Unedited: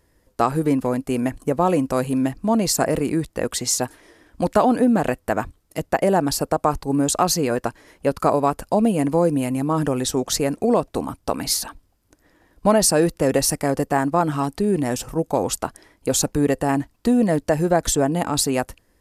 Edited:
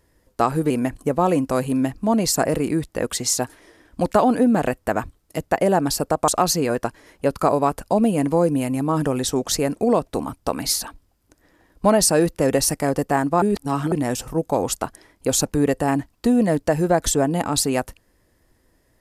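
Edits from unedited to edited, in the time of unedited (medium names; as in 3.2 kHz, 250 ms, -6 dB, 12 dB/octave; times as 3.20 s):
0.70–1.11 s: delete
6.69–7.09 s: delete
14.23–14.73 s: reverse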